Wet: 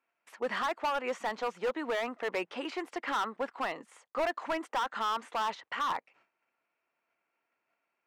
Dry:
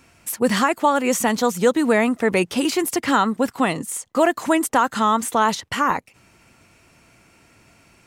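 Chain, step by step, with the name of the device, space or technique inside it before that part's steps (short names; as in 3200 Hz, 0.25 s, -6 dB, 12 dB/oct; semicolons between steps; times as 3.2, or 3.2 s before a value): walkie-talkie (BPF 560–2200 Hz; hard clip -19 dBFS, distortion -8 dB; gate -56 dBFS, range -16 dB); gain -7.5 dB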